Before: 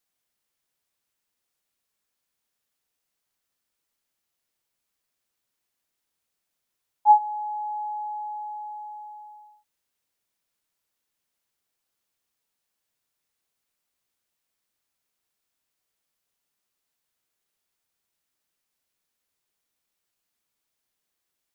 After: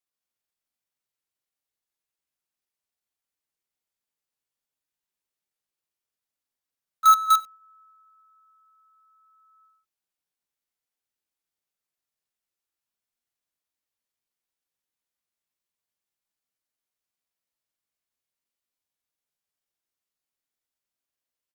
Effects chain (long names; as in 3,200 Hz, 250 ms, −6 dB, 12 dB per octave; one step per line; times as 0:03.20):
dynamic equaliser 890 Hz, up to +3 dB, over −26 dBFS, Q 1.2
pitch shifter +7.5 semitones
multi-tap delay 58/134/225 ms −9.5/−17.5/−3 dB
in parallel at −7.5 dB: log-companded quantiser 2 bits
on the sum: level −8.5 dB